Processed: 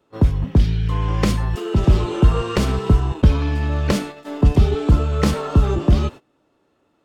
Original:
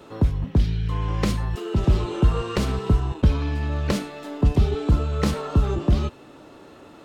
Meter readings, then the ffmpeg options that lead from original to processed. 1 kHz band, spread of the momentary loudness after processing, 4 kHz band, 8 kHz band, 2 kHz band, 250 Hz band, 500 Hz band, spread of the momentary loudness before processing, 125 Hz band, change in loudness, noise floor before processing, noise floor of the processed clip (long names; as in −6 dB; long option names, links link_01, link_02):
+4.5 dB, 5 LU, +4.0 dB, +4.5 dB, +4.5 dB, +4.5 dB, +4.5 dB, 5 LU, +4.5 dB, +4.5 dB, −47 dBFS, −65 dBFS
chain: -af "bandreject=frequency=4000:width=22,agate=range=-23dB:threshold=-35dB:ratio=16:detection=peak,volume=4.5dB"